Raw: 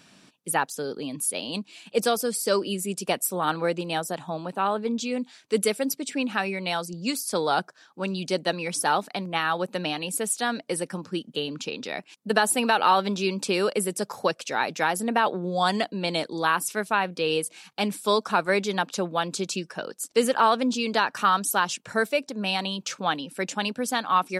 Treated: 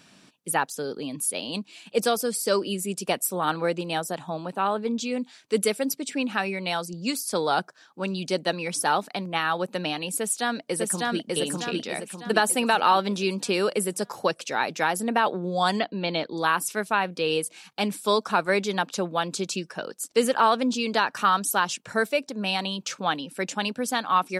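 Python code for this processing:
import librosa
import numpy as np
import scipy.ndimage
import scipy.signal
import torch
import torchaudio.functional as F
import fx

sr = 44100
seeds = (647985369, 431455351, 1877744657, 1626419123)

y = fx.echo_throw(x, sr, start_s=10.19, length_s=1.15, ms=600, feedback_pct=45, wet_db=-1.0)
y = fx.lowpass(y, sr, hz=4400.0, slope=24, at=(15.79, 16.37))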